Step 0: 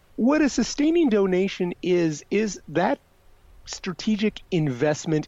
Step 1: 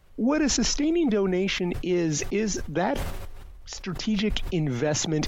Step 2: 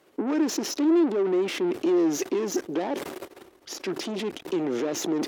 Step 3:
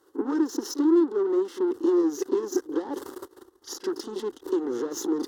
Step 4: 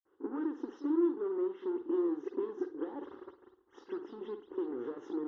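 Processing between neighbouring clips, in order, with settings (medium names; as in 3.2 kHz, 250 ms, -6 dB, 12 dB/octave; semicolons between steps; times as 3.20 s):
bass shelf 76 Hz +9.5 dB; decay stretcher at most 30 dB/s; trim -4.5 dB
peak limiter -21.5 dBFS, peak gain reduction 10 dB; valve stage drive 33 dB, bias 0.65; resonant high-pass 330 Hz, resonance Q 3.4; trim +5.5 dB
static phaser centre 640 Hz, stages 6; transient shaper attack +3 dB, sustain -8 dB; reverse echo 35 ms -12.5 dB
reverberation, pre-delay 52 ms; trim +7 dB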